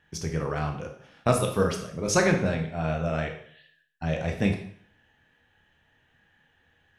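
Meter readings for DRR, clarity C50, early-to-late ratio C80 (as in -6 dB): 3.0 dB, 7.5 dB, 11.0 dB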